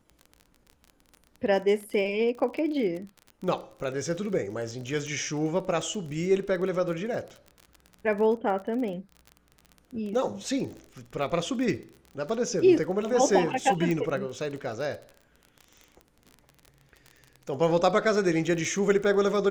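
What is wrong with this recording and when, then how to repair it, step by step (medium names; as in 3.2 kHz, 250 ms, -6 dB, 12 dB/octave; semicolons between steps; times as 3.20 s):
crackle 32 per s -35 dBFS
13.91 s: pop -18 dBFS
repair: de-click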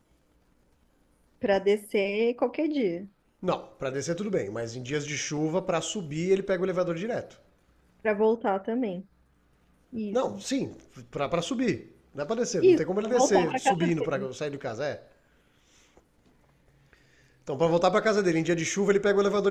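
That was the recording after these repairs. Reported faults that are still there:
nothing left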